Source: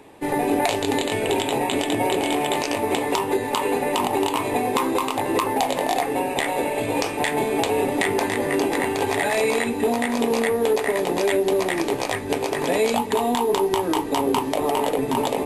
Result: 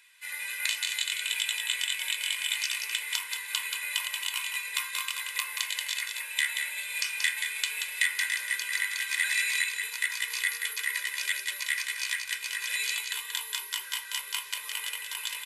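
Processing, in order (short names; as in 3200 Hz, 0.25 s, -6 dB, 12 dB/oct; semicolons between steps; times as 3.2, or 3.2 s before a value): inverse Chebyshev high-pass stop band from 810 Hz, stop band 40 dB; comb 2 ms, depth 88%; echo 0.181 s -5.5 dB; on a send at -11 dB: reverb RT60 0.50 s, pre-delay 3 ms; on the sum: gain -3.5 dB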